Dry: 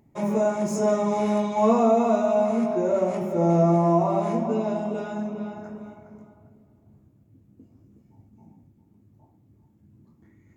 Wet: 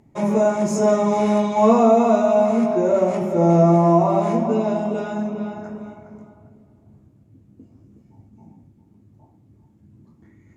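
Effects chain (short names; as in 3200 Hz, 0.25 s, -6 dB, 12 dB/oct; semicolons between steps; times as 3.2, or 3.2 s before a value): LPF 11000 Hz 12 dB/oct; gain +5 dB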